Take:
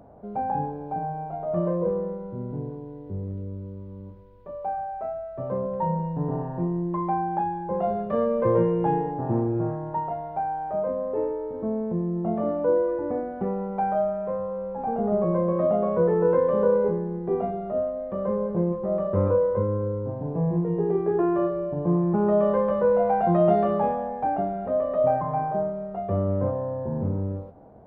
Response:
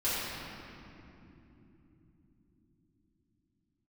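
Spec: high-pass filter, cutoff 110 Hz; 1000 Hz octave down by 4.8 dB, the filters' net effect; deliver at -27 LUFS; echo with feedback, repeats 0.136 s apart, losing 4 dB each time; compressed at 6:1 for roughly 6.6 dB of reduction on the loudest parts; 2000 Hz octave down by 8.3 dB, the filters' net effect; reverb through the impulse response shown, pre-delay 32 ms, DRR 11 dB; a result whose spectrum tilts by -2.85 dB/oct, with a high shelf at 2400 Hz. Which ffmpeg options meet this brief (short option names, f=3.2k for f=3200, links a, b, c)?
-filter_complex "[0:a]highpass=110,equalizer=f=1k:t=o:g=-5,equalizer=f=2k:t=o:g=-8,highshelf=f=2.4k:g=-3.5,acompressor=threshold=-25dB:ratio=6,aecho=1:1:136|272|408|544|680|816|952|1088|1224:0.631|0.398|0.25|0.158|0.0994|0.0626|0.0394|0.0249|0.0157,asplit=2[a][b];[1:a]atrim=start_sample=2205,adelay=32[c];[b][c]afir=irnorm=-1:irlink=0,volume=-20.5dB[d];[a][d]amix=inputs=2:normalize=0,volume=1.5dB"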